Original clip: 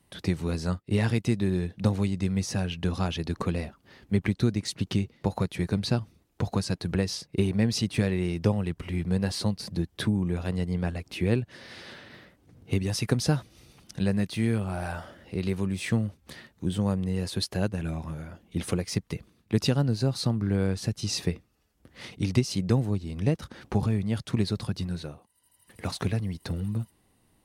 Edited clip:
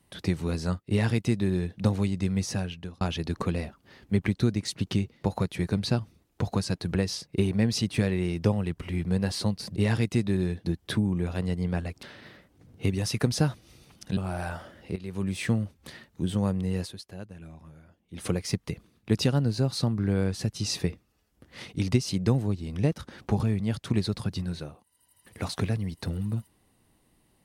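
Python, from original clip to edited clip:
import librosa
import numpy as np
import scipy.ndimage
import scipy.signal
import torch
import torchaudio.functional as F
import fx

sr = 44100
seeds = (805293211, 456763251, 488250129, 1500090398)

y = fx.edit(x, sr, fx.duplicate(start_s=0.89, length_s=0.9, to_s=9.76),
    fx.fade_out_span(start_s=2.51, length_s=0.5),
    fx.cut(start_s=11.13, length_s=0.78),
    fx.cut(start_s=14.05, length_s=0.55),
    fx.fade_in_from(start_s=15.39, length_s=0.28, curve='qua', floor_db=-13.0),
    fx.fade_down_up(start_s=17.24, length_s=1.46, db=-13.5, fade_s=0.13), tone=tone)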